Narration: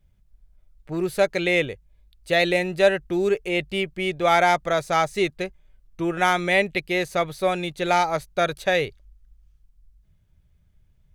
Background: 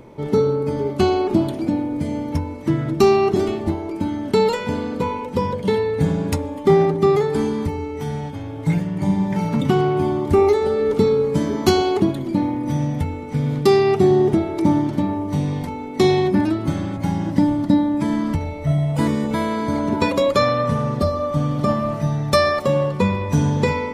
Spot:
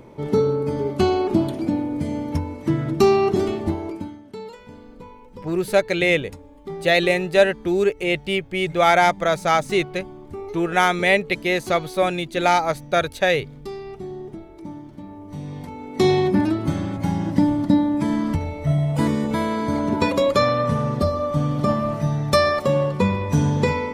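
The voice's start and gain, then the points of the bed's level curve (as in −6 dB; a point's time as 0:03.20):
4.55 s, +2.5 dB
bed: 0:03.89 −1.5 dB
0:04.24 −19 dB
0:14.92 −19 dB
0:16.09 −1 dB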